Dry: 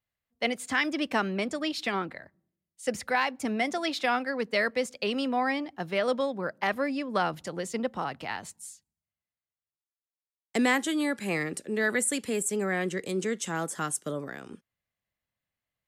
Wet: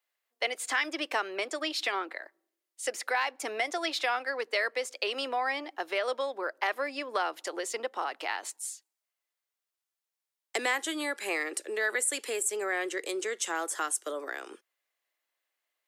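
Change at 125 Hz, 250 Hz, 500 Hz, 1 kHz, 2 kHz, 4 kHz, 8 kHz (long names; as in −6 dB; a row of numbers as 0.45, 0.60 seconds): below −30 dB, −11.5 dB, −3.0 dB, −1.5 dB, −0.5 dB, +0.5 dB, +1.0 dB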